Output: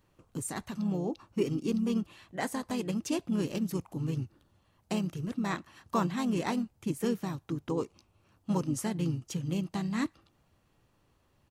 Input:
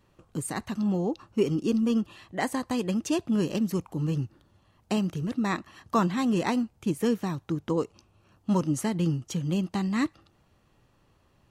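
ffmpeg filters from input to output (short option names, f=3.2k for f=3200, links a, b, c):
-filter_complex "[0:a]asplit=2[a][b];[b]asetrate=37084,aresample=44100,atempo=1.18921,volume=-8dB[c];[a][c]amix=inputs=2:normalize=0,crystalizer=i=0.5:c=0,volume=-5.5dB"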